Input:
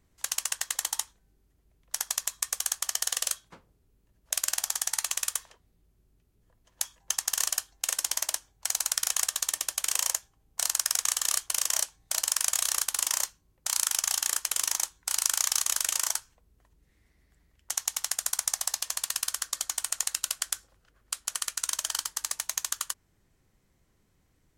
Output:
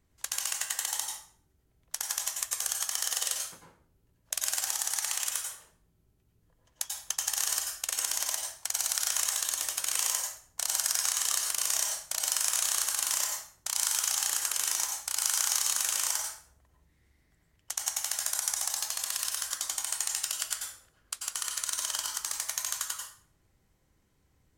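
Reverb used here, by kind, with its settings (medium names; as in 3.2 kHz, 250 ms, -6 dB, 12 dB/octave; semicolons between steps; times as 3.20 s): plate-style reverb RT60 0.52 s, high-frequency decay 0.8×, pre-delay 80 ms, DRR 0.5 dB; trim -3.5 dB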